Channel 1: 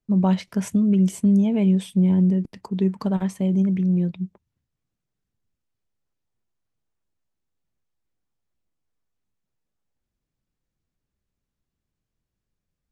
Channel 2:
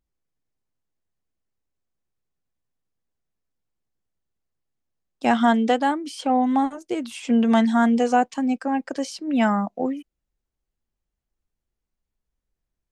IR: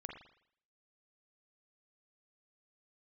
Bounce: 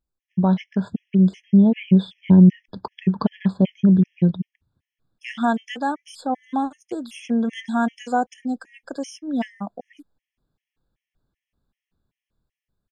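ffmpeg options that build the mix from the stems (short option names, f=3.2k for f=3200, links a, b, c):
-filter_complex "[0:a]lowpass=f=4.1k:w=0.5412,lowpass=f=4.1k:w=1.3066,dynaudnorm=f=390:g=7:m=7.5dB,adelay=200,volume=1.5dB[a];[1:a]volume=-2dB[b];[a][b]amix=inputs=2:normalize=0,afftfilt=real='re*gt(sin(2*PI*2.6*pts/sr)*(1-2*mod(floor(b*sr/1024/1700),2)),0)':imag='im*gt(sin(2*PI*2.6*pts/sr)*(1-2*mod(floor(b*sr/1024/1700),2)),0)':win_size=1024:overlap=0.75"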